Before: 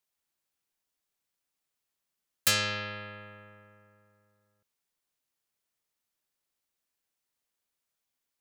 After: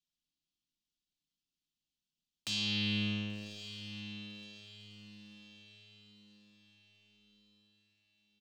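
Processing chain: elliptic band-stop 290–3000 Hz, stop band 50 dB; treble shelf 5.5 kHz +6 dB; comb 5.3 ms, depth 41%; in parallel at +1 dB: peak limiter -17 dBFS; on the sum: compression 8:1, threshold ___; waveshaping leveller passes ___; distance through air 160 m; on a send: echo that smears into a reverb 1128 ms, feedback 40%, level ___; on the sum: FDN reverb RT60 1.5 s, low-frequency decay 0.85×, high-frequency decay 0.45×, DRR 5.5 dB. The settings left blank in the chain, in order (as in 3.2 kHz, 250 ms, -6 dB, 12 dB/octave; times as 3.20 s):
-37 dBFS, 3, -11 dB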